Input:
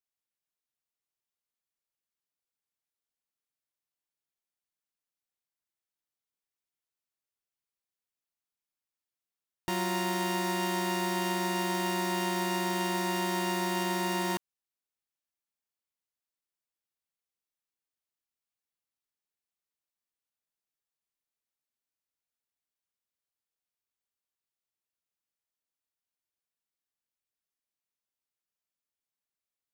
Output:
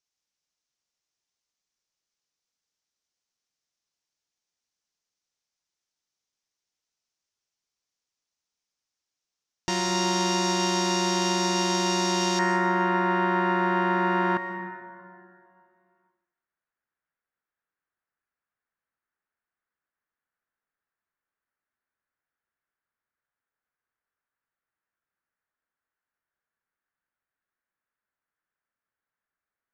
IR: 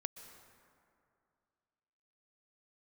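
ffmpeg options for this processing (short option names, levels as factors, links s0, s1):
-filter_complex "[0:a]asetnsamples=n=441:p=0,asendcmd='12.39 lowpass f 1600',lowpass=f=5900:t=q:w=3[s0];[1:a]atrim=start_sample=2205[s1];[s0][s1]afir=irnorm=-1:irlink=0,volume=2.11"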